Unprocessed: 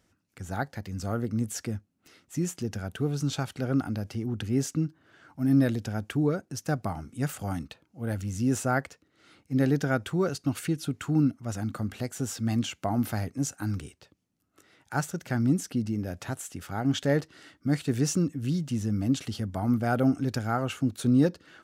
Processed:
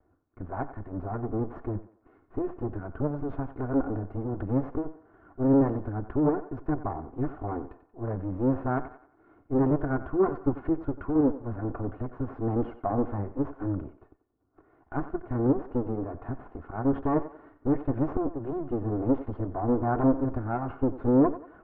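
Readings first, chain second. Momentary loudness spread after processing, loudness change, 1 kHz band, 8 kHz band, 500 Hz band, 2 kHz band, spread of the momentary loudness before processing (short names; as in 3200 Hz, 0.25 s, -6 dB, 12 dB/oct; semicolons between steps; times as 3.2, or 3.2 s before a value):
12 LU, -0.5 dB, +2.0 dB, under -40 dB, +3.5 dB, -8.0 dB, 10 LU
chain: minimum comb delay 2.8 ms; LPF 1200 Hz 24 dB/oct; thinning echo 91 ms, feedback 41%, high-pass 320 Hz, level -13 dB; gain +5 dB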